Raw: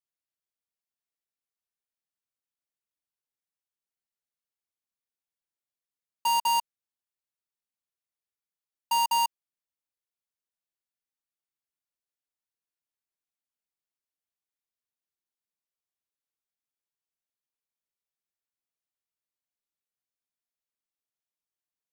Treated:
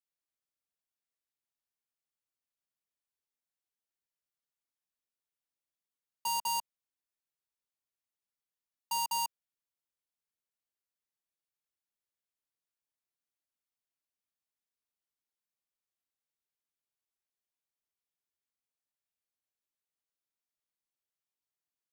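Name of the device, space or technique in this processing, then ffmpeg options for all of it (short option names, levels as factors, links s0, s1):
one-band saturation: -filter_complex "[0:a]acrossover=split=240|3100[s0][s1][s2];[s1]asoftclip=type=tanh:threshold=0.0376[s3];[s0][s3][s2]amix=inputs=3:normalize=0,volume=0.708"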